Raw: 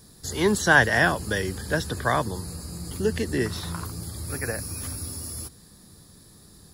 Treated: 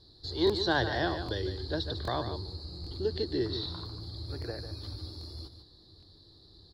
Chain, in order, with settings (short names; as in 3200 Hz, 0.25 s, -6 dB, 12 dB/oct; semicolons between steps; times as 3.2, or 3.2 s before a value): EQ curve 100 Hz 0 dB, 210 Hz -14 dB, 330 Hz +3 dB, 470 Hz -4 dB, 820 Hz -4 dB, 1200 Hz -9 dB, 2600 Hz -15 dB, 4200 Hz +11 dB, 6100 Hz -20 dB, 9400 Hz -29 dB; echo 0.148 s -9.5 dB; crackling interface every 0.79 s, samples 1024, repeat, from 0.45; gain -4 dB